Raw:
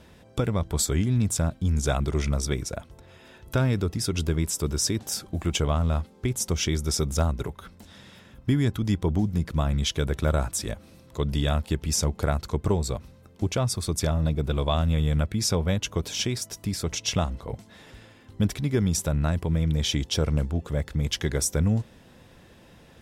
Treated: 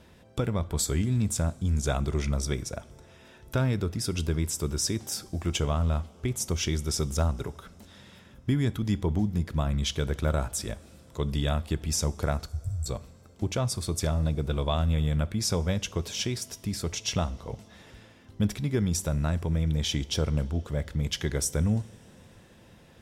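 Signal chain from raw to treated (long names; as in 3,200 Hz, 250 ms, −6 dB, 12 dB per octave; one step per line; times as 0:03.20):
0:12.46–0:12.86: Chebyshev band-stop filter 110–7,500 Hz, order 4
coupled-rooms reverb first 0.44 s, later 3.8 s, from −17 dB, DRR 15.5 dB
level −3 dB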